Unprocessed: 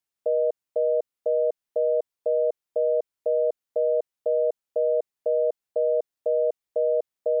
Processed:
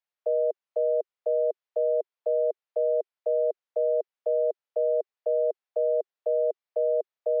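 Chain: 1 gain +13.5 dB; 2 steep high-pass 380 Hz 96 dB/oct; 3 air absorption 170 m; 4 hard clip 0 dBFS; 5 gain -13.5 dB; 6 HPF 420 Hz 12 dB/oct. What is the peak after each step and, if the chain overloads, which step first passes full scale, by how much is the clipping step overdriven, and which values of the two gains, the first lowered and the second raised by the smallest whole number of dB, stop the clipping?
-2.5, -2.5, -3.0, -3.0, -16.5, -18.0 dBFS; no overload

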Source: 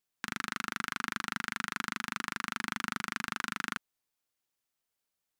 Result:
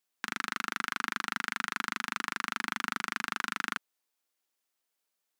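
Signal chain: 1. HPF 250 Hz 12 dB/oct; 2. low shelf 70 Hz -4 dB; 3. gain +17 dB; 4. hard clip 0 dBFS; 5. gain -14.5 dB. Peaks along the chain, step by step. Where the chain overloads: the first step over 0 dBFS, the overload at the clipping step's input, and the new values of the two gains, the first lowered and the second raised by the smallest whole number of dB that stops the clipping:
-13.0, -13.0, +4.0, 0.0, -14.5 dBFS; step 3, 4.0 dB; step 3 +13 dB, step 5 -10.5 dB

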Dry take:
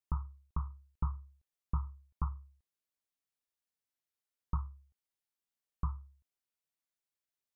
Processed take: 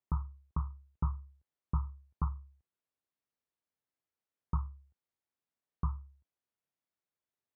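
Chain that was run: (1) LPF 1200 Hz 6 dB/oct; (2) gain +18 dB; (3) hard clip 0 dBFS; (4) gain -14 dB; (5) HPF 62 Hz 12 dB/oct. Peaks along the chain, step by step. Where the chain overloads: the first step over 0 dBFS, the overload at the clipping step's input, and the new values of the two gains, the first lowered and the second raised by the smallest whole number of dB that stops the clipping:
-21.0, -3.0, -3.0, -17.0, -20.0 dBFS; no overload

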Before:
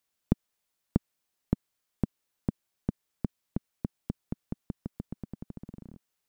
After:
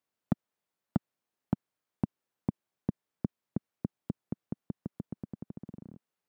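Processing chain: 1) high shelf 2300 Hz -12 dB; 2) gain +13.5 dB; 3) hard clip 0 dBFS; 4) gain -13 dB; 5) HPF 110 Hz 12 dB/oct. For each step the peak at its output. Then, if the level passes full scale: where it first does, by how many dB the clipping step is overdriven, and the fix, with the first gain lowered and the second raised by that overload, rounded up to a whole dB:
-8.0, +5.5, 0.0, -13.0, -12.5 dBFS; step 2, 5.5 dB; step 2 +7.5 dB, step 4 -7 dB

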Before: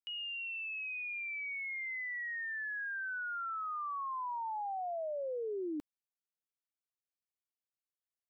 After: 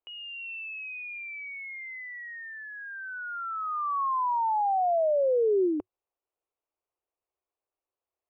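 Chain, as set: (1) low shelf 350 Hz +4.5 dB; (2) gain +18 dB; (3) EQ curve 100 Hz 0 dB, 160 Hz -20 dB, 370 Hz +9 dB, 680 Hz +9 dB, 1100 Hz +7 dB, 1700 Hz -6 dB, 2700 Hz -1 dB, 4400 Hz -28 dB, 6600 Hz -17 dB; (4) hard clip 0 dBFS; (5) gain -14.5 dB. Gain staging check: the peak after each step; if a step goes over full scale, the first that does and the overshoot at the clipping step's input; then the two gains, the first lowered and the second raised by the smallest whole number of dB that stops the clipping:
-31.5, -13.5, -5.5, -5.5, -20.0 dBFS; no overload

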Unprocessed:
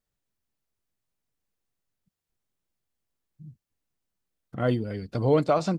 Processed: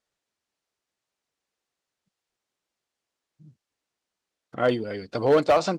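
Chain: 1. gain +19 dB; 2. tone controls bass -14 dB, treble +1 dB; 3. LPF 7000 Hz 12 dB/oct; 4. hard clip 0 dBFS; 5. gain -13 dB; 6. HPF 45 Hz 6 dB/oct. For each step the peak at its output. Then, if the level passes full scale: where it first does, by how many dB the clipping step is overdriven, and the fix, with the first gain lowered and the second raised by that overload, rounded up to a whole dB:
+9.5, +8.5, +8.5, 0.0, -13.0, -11.5 dBFS; step 1, 8.5 dB; step 1 +10 dB, step 5 -4 dB

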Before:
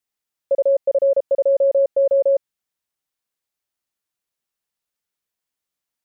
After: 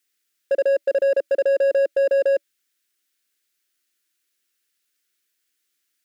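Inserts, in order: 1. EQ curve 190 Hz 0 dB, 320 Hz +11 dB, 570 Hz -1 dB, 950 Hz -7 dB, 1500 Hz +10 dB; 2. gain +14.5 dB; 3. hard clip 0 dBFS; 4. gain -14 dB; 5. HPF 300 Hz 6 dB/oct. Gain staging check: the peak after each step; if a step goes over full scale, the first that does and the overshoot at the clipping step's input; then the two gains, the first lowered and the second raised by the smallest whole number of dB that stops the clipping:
-11.5, +3.0, 0.0, -14.0, -13.0 dBFS; step 2, 3.0 dB; step 2 +11.5 dB, step 4 -11 dB

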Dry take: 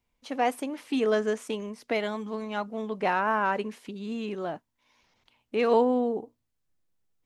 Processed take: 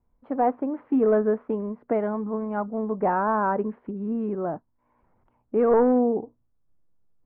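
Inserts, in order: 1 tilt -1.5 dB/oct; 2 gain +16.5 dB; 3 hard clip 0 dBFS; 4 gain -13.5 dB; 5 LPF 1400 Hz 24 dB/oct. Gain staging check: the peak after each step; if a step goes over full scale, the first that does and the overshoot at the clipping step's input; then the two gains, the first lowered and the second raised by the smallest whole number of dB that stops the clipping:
-9.5, +7.0, 0.0, -13.5, -12.5 dBFS; step 2, 7.0 dB; step 2 +9.5 dB, step 4 -6.5 dB

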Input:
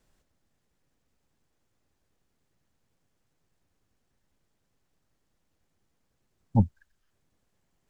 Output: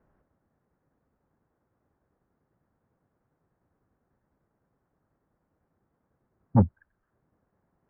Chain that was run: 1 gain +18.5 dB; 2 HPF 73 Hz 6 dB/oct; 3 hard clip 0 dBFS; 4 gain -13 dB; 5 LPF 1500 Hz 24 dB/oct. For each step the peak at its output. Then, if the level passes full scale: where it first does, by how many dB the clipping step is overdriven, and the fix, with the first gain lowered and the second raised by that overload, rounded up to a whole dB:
+8.0, +7.5, 0.0, -13.0, -12.5 dBFS; step 1, 7.5 dB; step 1 +10.5 dB, step 4 -5 dB

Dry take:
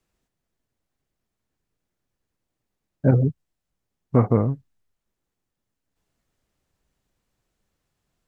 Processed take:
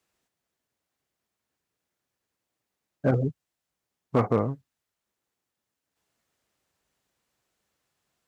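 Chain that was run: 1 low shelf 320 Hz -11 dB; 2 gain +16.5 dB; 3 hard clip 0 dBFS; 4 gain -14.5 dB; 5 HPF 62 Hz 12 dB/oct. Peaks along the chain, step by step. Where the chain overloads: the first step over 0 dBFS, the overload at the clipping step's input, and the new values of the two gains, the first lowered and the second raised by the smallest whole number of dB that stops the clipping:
-10.0, +6.5, 0.0, -14.5, -11.5 dBFS; step 2, 6.5 dB; step 2 +9.5 dB, step 4 -7.5 dB

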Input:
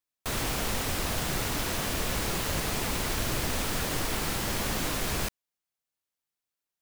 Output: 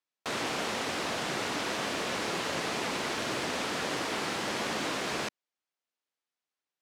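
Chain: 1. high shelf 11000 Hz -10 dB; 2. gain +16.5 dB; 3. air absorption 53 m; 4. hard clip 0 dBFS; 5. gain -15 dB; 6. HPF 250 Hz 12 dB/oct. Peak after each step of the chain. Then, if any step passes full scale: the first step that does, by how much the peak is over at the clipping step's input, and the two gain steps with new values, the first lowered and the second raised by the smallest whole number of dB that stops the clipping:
-18.0, -1.5, -2.0, -2.0, -17.0, -20.5 dBFS; no overload

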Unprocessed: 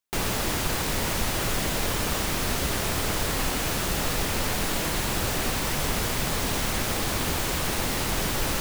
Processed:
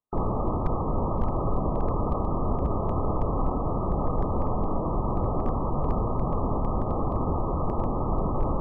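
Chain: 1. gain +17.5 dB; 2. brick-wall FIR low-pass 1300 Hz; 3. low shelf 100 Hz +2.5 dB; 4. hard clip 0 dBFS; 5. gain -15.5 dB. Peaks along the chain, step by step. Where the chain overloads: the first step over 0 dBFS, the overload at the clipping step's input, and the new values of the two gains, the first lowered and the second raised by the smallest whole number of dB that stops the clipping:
+4.0, +1.5, +3.5, 0.0, -15.5 dBFS; step 1, 3.5 dB; step 1 +13.5 dB, step 5 -11.5 dB

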